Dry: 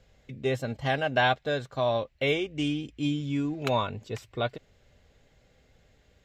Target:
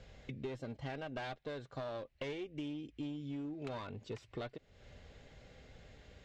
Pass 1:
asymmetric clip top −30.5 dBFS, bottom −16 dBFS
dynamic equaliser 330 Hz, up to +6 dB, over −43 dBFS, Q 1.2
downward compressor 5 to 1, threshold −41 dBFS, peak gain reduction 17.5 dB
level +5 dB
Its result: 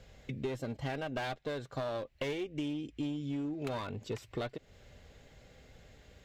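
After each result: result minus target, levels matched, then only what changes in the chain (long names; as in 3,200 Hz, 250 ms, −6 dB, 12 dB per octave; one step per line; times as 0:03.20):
downward compressor: peak gain reduction −5.5 dB; 8,000 Hz band +3.5 dB
change: downward compressor 5 to 1, threshold −48 dBFS, peak gain reduction 23 dB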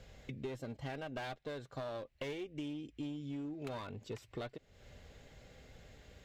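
8,000 Hz band +4.0 dB
add after dynamic equaliser: low-pass filter 6,100 Hz 12 dB per octave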